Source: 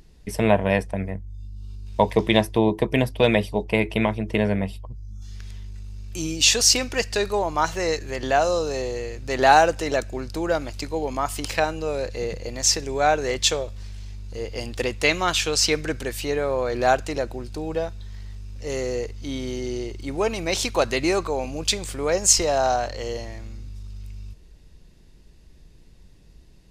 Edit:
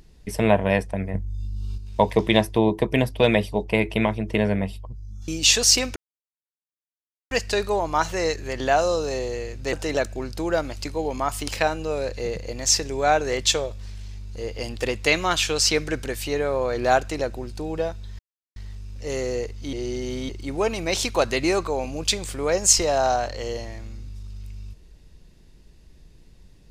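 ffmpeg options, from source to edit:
-filter_complex "[0:a]asplit=9[a][b][c][d][e][f][g][h][i];[a]atrim=end=1.142[j];[b]atrim=start=1.138:end=1.782,asetpts=PTS-STARTPTS,volume=7dB[k];[c]atrim=start=1.778:end=5.282[l];[d]atrim=start=6.258:end=6.94,asetpts=PTS-STARTPTS,afade=t=out:st=0.678:d=0.004:c=hsin,apad=pad_dur=1.35[m];[e]atrim=start=6.94:end=9.362,asetpts=PTS-STARTPTS,afade=t=in:d=0.004:c=hsin[n];[f]atrim=start=9.698:end=18.16,asetpts=PTS-STARTPTS,afade=t=out:st=8.458:d=0.004:c=hsin,apad=pad_dur=0.37[o];[g]atrim=start=18.16:end=19.332,asetpts=PTS-STARTPTS,afade=t=in:d=0.004:c=hsin[p];[h]atrim=start=19.328:end=19.892,asetpts=PTS-STARTPTS,areverse[q];[i]atrim=start=19.888[r];[j][k]acrossfade=d=0.004:c1=hsin:c2=hsin[s];[s][l]acrossfade=d=0.004:c1=hsin:c2=hsin[t];[m][n]concat=n=2:v=0:a=1[u];[t][u]acrossfade=d=0.004:c1=hsin:c2=hsin[v];[o][p]concat=n=2:v=0:a=1[w];[v][w]acrossfade=d=0.004:c1=hsin:c2=hsin[x];[x][q]acrossfade=d=0.004:c1=hsin:c2=hsin[y];[y][r]acrossfade=d=0.004:c1=hsin:c2=hsin"

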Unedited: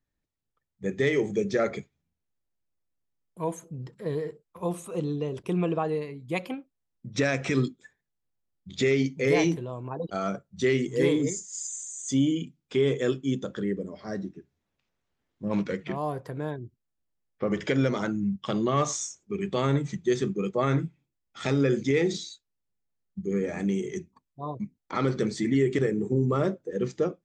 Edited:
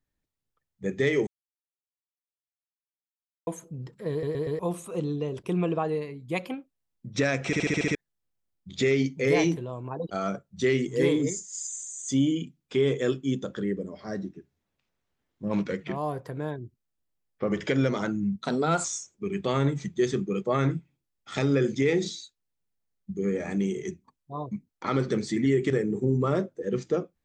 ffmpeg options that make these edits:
-filter_complex "[0:a]asplit=16[a][b][c][d][e][f][g][h][i][j][k][l][m][n][o][p];[a]atrim=end=1.27,asetpts=PTS-STARTPTS,afade=t=out:st=1.266:d=0.004:c=hsin[q];[b]atrim=start=1.27:end=3.47,asetpts=PTS-STARTPTS,volume=0[r];[c]atrim=start=3.47:end=4.232,asetpts=PTS-STARTPTS,afade=t=in:d=0.004:c=hsin[s];[d]atrim=start=4.108:end=4.232[t];[e]atrim=start=4.108:end=4.232[u];[f]atrim=start=4.108:end=4.232[v];[g]atrim=start=4.588:end=7.532[w];[h]atrim=start=7.458:end=7.532[x];[i]atrim=start=7.458:end=7.532[y];[j]atrim=start=7.458:end=7.532[z];[k]atrim=start=7.458:end=7.532[aa];[l]atrim=start=7.458:end=7.532[ab];[m]atrim=start=7.458:end=7.532[ac];[n]atrim=start=7.948:end=18.384[ad];[o]atrim=start=18.38:end=18.93,asetpts=PTS-STARTPTS,asetrate=52038,aresample=44100,atrim=end_sample=20555,asetpts=PTS-STARTPTS[ae];[p]atrim=start=18.926[af];[q][r][s]concat=n=3:v=0:a=1[ag];[ag][t]acrossfade=d=0.004:c1=hsin:c2=hsin[ah];[ah][u]acrossfade=d=0.004:c1=hsin:c2=hsin[ai];[ai][v]acrossfade=d=0.004:c1=hsin:c2=hsin[aj];[aj][w]acrossfade=d=0.004:c1=hsin:c2=hsin[ak];[ak][x]acrossfade=d=0.004:c1=hsin:c2=hsin[al];[al][y]acrossfade=d=0.004:c1=hsin:c2=hsin[am];[am][z]acrossfade=d=0.004:c1=hsin:c2=hsin[an];[an][aa]acrossfade=d=0.004:c1=hsin:c2=hsin[ao];[ao][ab]acrossfade=d=0.004:c1=hsin:c2=hsin[ap];[ap][ac]acrossfade=d=0.004:c1=hsin:c2=hsin[aq];[aq][ad]acrossfade=d=0.004:c1=hsin:c2=hsin[ar];[ar][ae]acrossfade=d=0.004:c1=hsin:c2=hsin[as];[as][af]acrossfade=d=0.004:c1=hsin:c2=hsin"

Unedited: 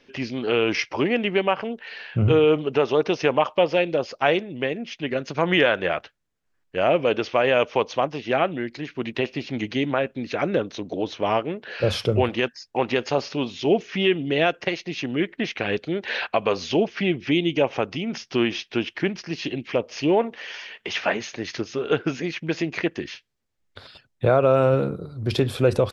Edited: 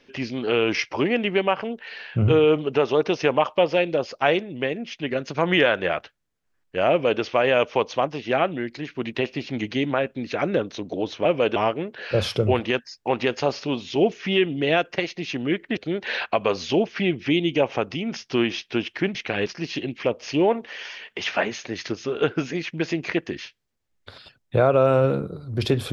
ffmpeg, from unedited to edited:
-filter_complex "[0:a]asplit=6[a][b][c][d][e][f];[a]atrim=end=11.252[g];[b]atrim=start=6.898:end=7.212[h];[c]atrim=start=11.248:end=15.462[i];[d]atrim=start=15.778:end=19.162[j];[e]atrim=start=15.458:end=15.782[k];[f]atrim=start=19.158[l];[g][h]acrossfade=d=0.004:c1=hsin:c2=hsin[m];[m][i]acrossfade=d=0.004:c1=hsin:c2=hsin[n];[n][j]acrossfade=d=0.004:c1=hsin:c2=hsin[o];[o][k]acrossfade=d=0.004:c1=hsin:c2=hsin[p];[p][l]acrossfade=d=0.004:c1=hsin:c2=hsin"

